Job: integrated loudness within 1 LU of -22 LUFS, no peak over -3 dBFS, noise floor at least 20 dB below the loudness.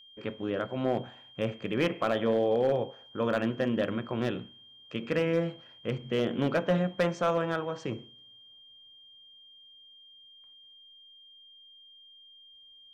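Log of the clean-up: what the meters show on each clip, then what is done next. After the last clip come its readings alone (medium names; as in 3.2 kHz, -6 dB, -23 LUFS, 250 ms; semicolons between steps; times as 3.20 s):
clipped samples 0.3%; clipping level -18.5 dBFS; steady tone 3.2 kHz; tone level -52 dBFS; loudness -30.5 LUFS; peak level -18.5 dBFS; loudness target -22.0 LUFS
-> clip repair -18.5 dBFS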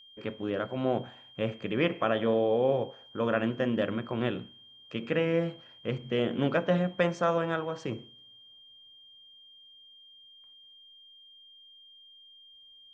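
clipped samples 0.0%; steady tone 3.2 kHz; tone level -52 dBFS
-> band-stop 3.2 kHz, Q 30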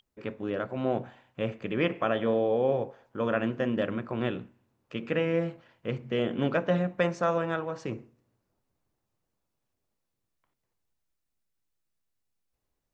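steady tone not found; loudness -30.0 LUFS; peak level -12.5 dBFS; loudness target -22.0 LUFS
-> trim +8 dB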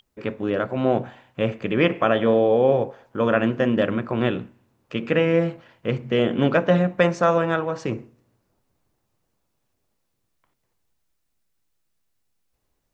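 loudness -22.0 LUFS; peak level -4.5 dBFS; noise floor -74 dBFS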